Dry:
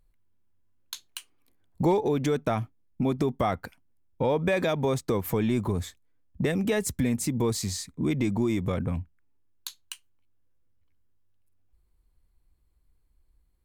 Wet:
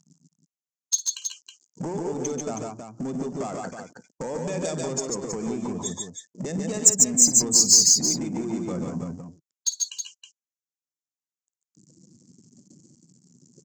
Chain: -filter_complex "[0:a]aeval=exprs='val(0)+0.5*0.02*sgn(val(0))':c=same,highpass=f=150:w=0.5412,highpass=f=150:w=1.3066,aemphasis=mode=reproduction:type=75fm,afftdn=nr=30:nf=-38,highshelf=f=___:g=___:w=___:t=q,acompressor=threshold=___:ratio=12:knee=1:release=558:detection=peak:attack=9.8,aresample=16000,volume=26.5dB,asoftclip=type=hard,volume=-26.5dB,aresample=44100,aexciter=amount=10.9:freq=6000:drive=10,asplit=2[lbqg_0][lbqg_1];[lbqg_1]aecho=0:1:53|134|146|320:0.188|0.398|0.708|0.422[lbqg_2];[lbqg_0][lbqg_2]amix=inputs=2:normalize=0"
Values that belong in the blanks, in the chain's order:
3200, 13.5, 1.5, -26dB